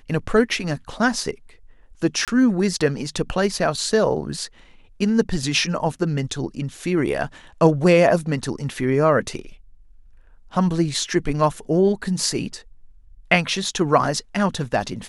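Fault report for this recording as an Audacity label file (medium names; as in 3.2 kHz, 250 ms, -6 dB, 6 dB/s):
2.250000	2.280000	dropout 27 ms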